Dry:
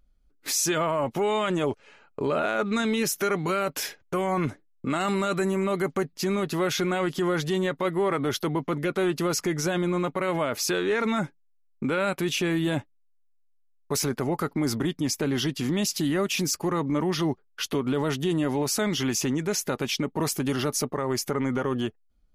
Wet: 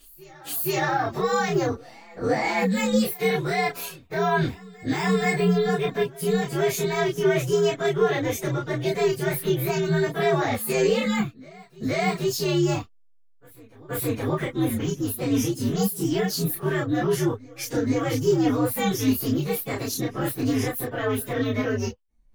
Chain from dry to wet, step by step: frequency axis rescaled in octaves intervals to 125%; reverse echo 475 ms -22.5 dB; chorus voices 6, 0.79 Hz, delay 29 ms, depth 2.7 ms; trim +7.5 dB

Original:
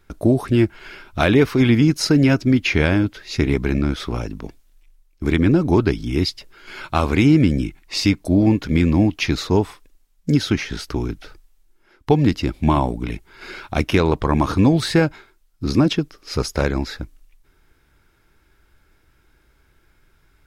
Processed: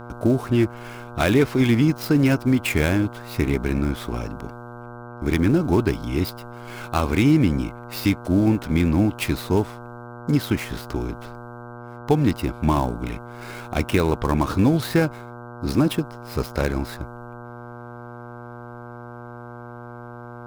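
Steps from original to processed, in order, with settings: dead-time distortion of 0.061 ms; mains buzz 120 Hz, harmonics 13, -35 dBFS -3 dB/octave; trim -3 dB

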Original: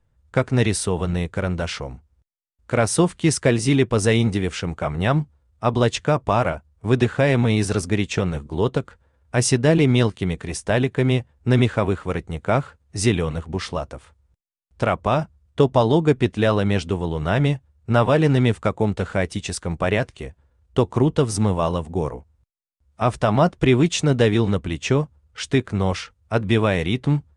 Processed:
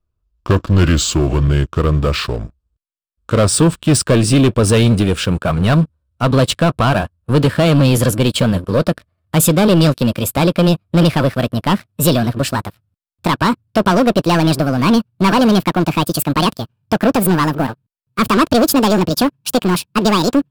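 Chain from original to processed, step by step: gliding tape speed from 72% -> 195%; waveshaping leveller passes 3; graphic EQ with 31 bands 400 Hz -3 dB, 800 Hz -9 dB, 2 kHz -10 dB, 6.3 kHz -8 dB

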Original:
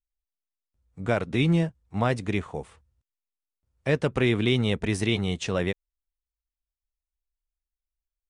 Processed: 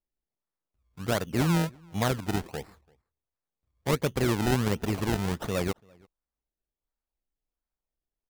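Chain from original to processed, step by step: decimation with a swept rate 27×, swing 100% 1.4 Hz; echo from a far wall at 58 m, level -28 dB; trim -2.5 dB

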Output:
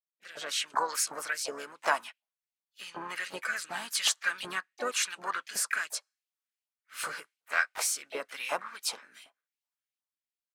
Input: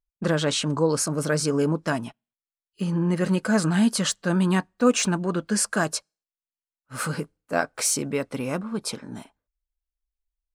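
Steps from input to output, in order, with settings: fade-in on the opening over 0.83 s; compression 1.5:1, threshold -27 dBFS, peak gain reduction 5 dB; LFO high-pass saw up 2.7 Hz 720–3000 Hz; rotary cabinet horn 0.9 Hz; harmony voices -4 st -16 dB, +3 st -11 dB, +7 st -12 dB

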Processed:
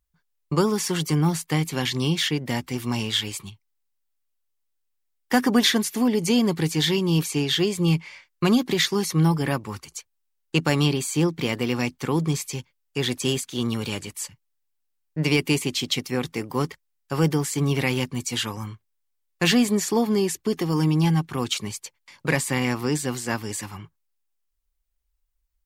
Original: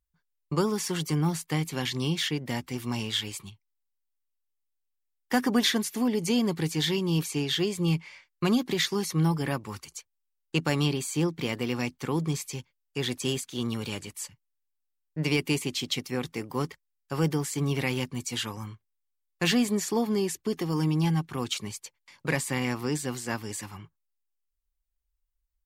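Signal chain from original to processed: 8.91–9.93 s: tape noise reduction on one side only decoder only; trim +5 dB

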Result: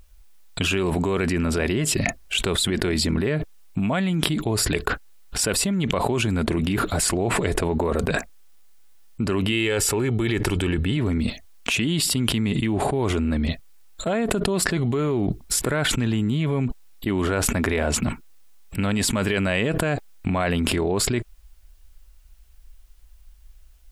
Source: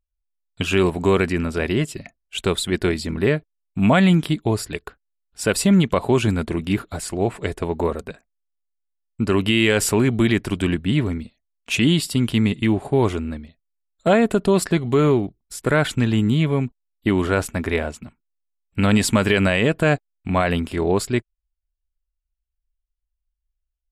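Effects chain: 9.52–10.97 s: comb 2.3 ms, depth 42%; level flattener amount 100%; trim -10 dB

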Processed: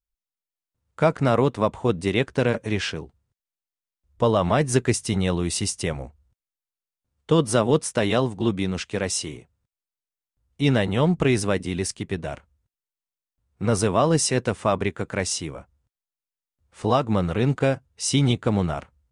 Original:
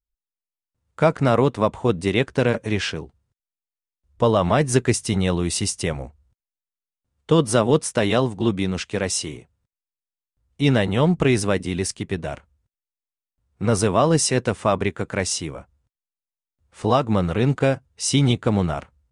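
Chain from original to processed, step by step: trim -2 dB

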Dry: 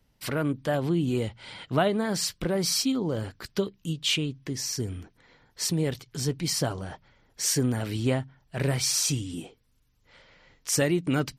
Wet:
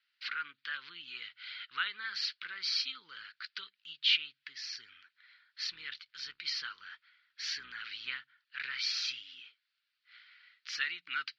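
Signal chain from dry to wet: 5.65–8.17 s: octave divider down 2 oct, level +4 dB; elliptic band-pass 1.4–4.5 kHz, stop band 40 dB

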